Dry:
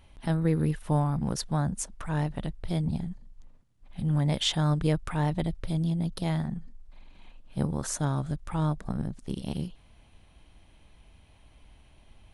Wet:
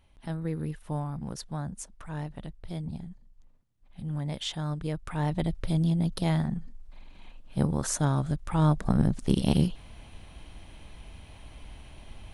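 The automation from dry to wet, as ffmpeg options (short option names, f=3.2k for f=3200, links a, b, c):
-af "volume=9.5dB,afade=t=in:st=4.92:d=0.72:silence=0.334965,afade=t=in:st=8.5:d=0.65:silence=0.446684"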